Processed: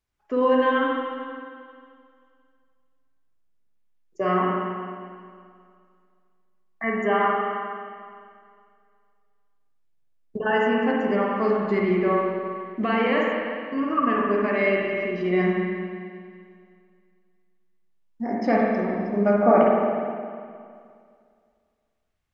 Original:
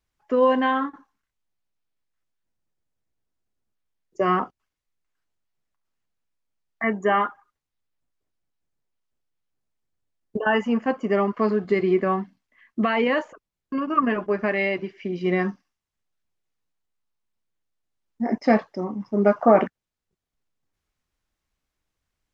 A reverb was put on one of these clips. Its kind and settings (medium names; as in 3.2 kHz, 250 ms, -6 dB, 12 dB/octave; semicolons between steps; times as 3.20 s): spring tank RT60 2.2 s, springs 44/51 ms, chirp 50 ms, DRR -3 dB; trim -4 dB